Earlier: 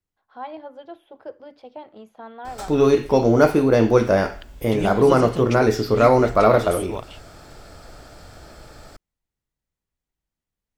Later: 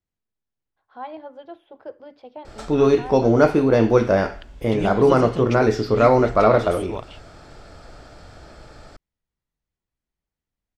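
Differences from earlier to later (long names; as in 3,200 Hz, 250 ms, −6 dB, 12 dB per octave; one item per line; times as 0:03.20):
first voice: entry +0.60 s
master: add high-frequency loss of the air 62 metres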